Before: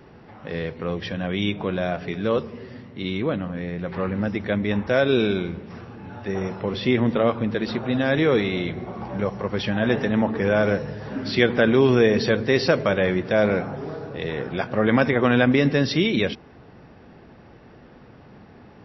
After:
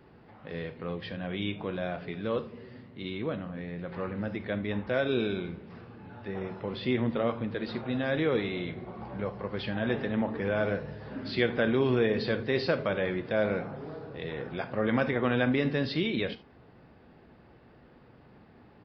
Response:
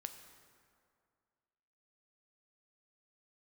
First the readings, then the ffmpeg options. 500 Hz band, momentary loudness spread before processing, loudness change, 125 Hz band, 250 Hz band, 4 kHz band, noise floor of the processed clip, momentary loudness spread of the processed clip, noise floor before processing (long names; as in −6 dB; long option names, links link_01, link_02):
−8.5 dB, 14 LU, −8.5 dB, −8.5 dB, −8.5 dB, −8.5 dB, −56 dBFS, 14 LU, −48 dBFS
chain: -filter_complex "[1:a]atrim=start_sample=2205,atrim=end_sample=3969[link_01];[0:a][link_01]afir=irnorm=-1:irlink=0,aresample=11025,aresample=44100,volume=-4.5dB"